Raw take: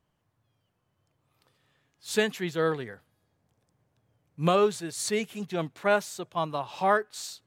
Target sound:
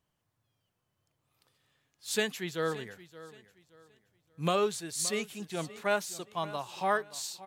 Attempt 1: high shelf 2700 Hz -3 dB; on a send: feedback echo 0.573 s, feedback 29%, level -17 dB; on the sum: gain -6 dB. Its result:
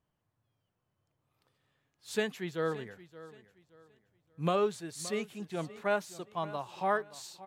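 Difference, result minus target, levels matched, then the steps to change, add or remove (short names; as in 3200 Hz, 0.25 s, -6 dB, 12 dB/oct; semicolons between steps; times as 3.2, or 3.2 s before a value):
4000 Hz band -5.0 dB
change: high shelf 2700 Hz +7.5 dB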